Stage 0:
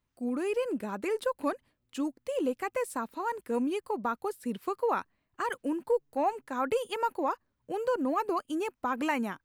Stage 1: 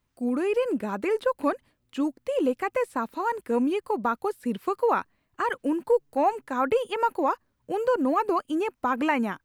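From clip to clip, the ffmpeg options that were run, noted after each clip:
ffmpeg -i in.wav -filter_complex "[0:a]acrossover=split=3500[link_01][link_02];[link_02]acompressor=threshold=-56dB:ratio=4:attack=1:release=60[link_03];[link_01][link_03]amix=inputs=2:normalize=0,volume=5.5dB" out.wav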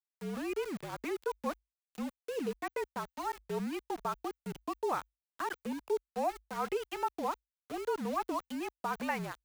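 ffmpeg -i in.wav -af "lowshelf=frequency=400:gain=-5.5,aeval=exprs='val(0)*gte(abs(val(0)),0.0237)':channel_layout=same,afreqshift=-53,volume=-8.5dB" out.wav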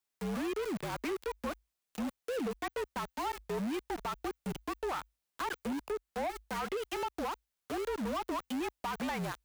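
ffmpeg -i in.wav -af "acompressor=threshold=-34dB:ratio=6,asoftclip=type=tanh:threshold=-40dB,volume=8.5dB" out.wav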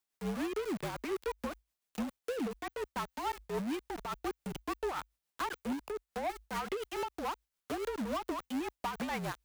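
ffmpeg -i in.wav -af "tremolo=f=7:d=0.49,volume=1.5dB" out.wav

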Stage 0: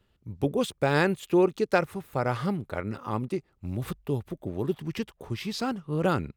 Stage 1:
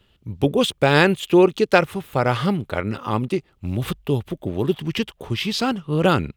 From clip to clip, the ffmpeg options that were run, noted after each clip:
ffmpeg -i in.wav -af "equalizer=frequency=3100:width=2:gain=8,volume=7.5dB" out.wav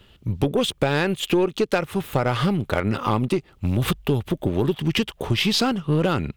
ffmpeg -i in.wav -af "acompressor=threshold=-23dB:ratio=12,aeval=exprs='0.224*(cos(1*acos(clip(val(0)/0.224,-1,1)))-cos(1*PI/2))+0.0141*(cos(5*acos(clip(val(0)/0.224,-1,1)))-cos(5*PI/2))+0.00562*(cos(8*acos(clip(val(0)/0.224,-1,1)))-cos(8*PI/2))':channel_layout=same,volume=5dB" out.wav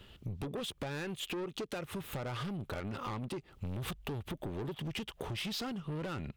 ffmpeg -i in.wav -af "asoftclip=type=tanh:threshold=-22dB,acompressor=threshold=-35dB:ratio=5,volume=-3dB" out.wav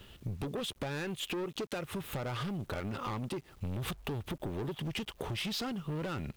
ffmpeg -i in.wav -af "acrusher=bits=10:mix=0:aa=0.000001,volume=2dB" out.wav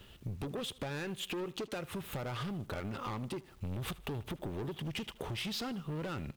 ffmpeg -i in.wav -af "aecho=1:1:78|156|234:0.0944|0.0415|0.0183,volume=-2dB" out.wav

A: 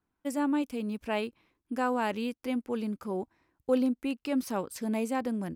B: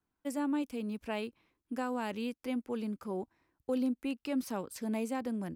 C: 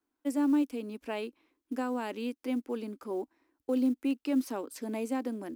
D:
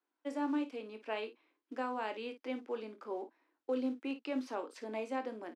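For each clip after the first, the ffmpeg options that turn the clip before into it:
ffmpeg -i in.wav -filter_complex "[0:a]acrossover=split=320|3000[link_01][link_02][link_03];[link_02]acompressor=threshold=-30dB:ratio=6[link_04];[link_01][link_04][link_03]amix=inputs=3:normalize=0,volume=-3.5dB" out.wav
ffmpeg -i in.wav -af "lowshelf=frequency=210:width_type=q:width=3:gain=-9.5,acrusher=bits=9:mode=log:mix=0:aa=0.000001" out.wav
ffmpeg -i in.wav -filter_complex "[0:a]highpass=440,lowpass=4000,asplit=2[link_01][link_02];[link_02]aecho=0:1:23|55:0.335|0.237[link_03];[link_01][link_03]amix=inputs=2:normalize=0,volume=-1dB" out.wav

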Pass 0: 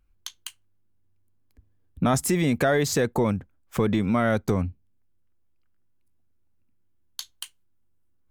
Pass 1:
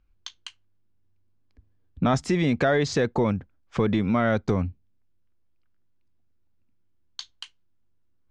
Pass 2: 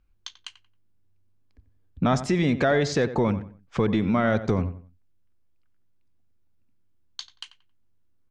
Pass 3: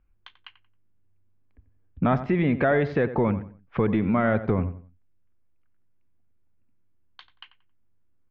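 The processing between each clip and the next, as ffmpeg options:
ffmpeg -i in.wav -af "lowpass=frequency=5600:width=0.5412,lowpass=frequency=5600:width=1.3066" out.wav
ffmpeg -i in.wav -filter_complex "[0:a]asplit=2[link_01][link_02];[link_02]adelay=90,lowpass=frequency=2300:poles=1,volume=-12.5dB,asplit=2[link_03][link_04];[link_04]adelay=90,lowpass=frequency=2300:poles=1,volume=0.3,asplit=2[link_05][link_06];[link_06]adelay=90,lowpass=frequency=2300:poles=1,volume=0.3[link_07];[link_01][link_03][link_05][link_07]amix=inputs=4:normalize=0" out.wav
ffmpeg -i in.wav -af "lowpass=frequency=2600:width=0.5412,lowpass=frequency=2600:width=1.3066" out.wav

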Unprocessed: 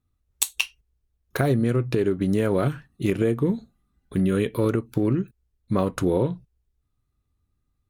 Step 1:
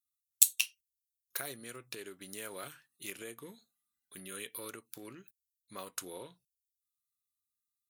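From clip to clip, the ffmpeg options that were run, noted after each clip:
ffmpeg -i in.wav -af "aderivative" out.wav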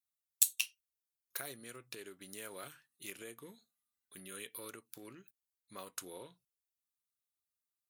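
ffmpeg -i in.wav -af "asoftclip=type=tanh:threshold=-5dB,volume=-3.5dB" out.wav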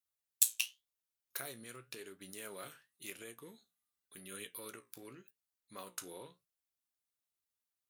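ffmpeg -i in.wav -af "flanger=delay=9.3:depth=9.2:regen=64:speed=0.91:shape=triangular,volume=4dB" out.wav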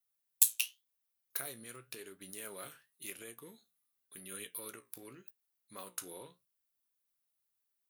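ffmpeg -i in.wav -af "aexciter=amount=2:drive=4.3:freq=9900" out.wav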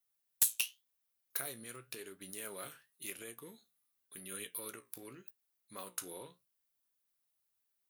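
ffmpeg -i in.wav -af "asoftclip=type=tanh:threshold=-19dB,volume=1dB" out.wav

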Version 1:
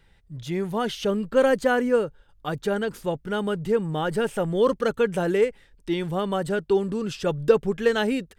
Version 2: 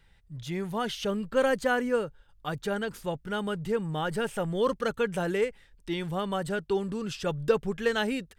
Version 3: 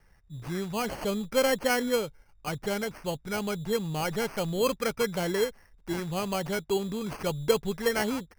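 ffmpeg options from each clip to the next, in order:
ffmpeg -i in.wav -af "equalizer=frequency=360:width=0.74:gain=-5,volume=-2dB" out.wav
ffmpeg -i in.wav -af "acrusher=samples=12:mix=1:aa=0.000001" out.wav

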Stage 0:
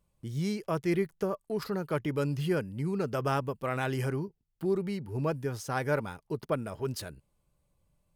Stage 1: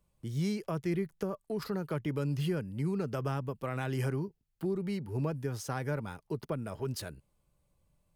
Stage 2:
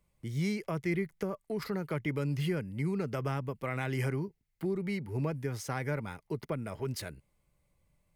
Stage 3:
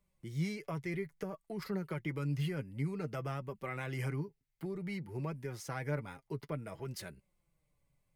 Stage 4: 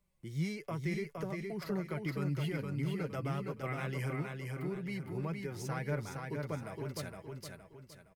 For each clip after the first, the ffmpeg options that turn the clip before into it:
ffmpeg -i in.wav -filter_complex "[0:a]acrossover=split=240[link_01][link_02];[link_02]acompressor=threshold=-34dB:ratio=6[link_03];[link_01][link_03]amix=inputs=2:normalize=0" out.wav
ffmpeg -i in.wav -af "equalizer=frequency=2100:width_type=o:width=0.3:gain=10.5" out.wav
ffmpeg -i in.wav -af "flanger=delay=5:depth=2.6:regen=36:speed=0.56:shape=triangular,volume=-1dB" out.wav
ffmpeg -i in.wav -af "aecho=1:1:465|930|1395|1860|2325:0.631|0.24|0.0911|0.0346|0.0132" out.wav

